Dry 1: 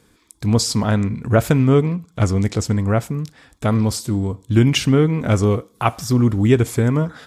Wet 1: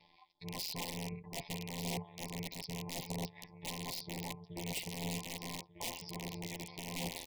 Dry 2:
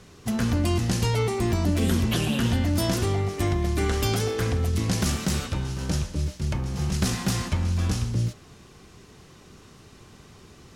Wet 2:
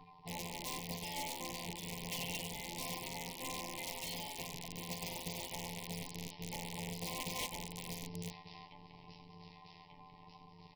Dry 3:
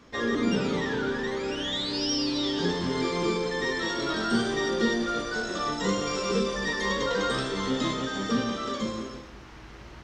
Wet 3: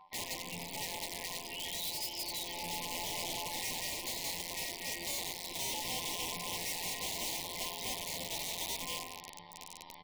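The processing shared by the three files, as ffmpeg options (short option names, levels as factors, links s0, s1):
-af "areverse,acompressor=threshold=0.0501:ratio=5,areverse,lowshelf=f=710:t=q:w=3:g=-10,asoftclip=type=tanh:threshold=0.0668,afftdn=nr=22:nf=-47,aecho=1:1:1191|2382|3573|4764:0.178|0.0818|0.0376|0.0173,afftfilt=real='hypot(re,im)*cos(PI*b)':imag='0':win_size=1024:overlap=0.75,tremolo=f=270:d=0.857,aresample=11025,aresample=44100,aeval=exprs='(mod(66.8*val(0)+1,2)-1)/66.8':c=same,asuperstop=centerf=1400:order=8:qfactor=1.4,acompressor=mode=upward:threshold=0.00158:ratio=2.5,volume=2"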